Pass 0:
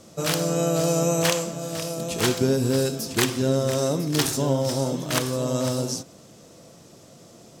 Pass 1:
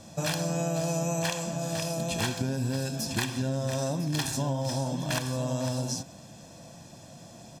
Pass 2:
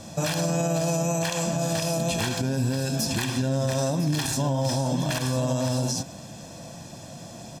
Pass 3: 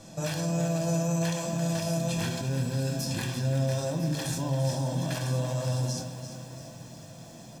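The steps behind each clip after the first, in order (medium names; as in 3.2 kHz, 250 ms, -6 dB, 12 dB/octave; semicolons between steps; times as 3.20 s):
treble shelf 11 kHz -8 dB; comb 1.2 ms, depth 68%; compression 4:1, threshold -27 dBFS, peak gain reduction 10 dB
peak limiter -23.5 dBFS, peak gain reduction 9 dB; trim +7 dB
reverberation RT60 0.35 s, pre-delay 6 ms, DRR 3.5 dB; bit-crushed delay 341 ms, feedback 55%, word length 7-bit, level -10 dB; trim -8 dB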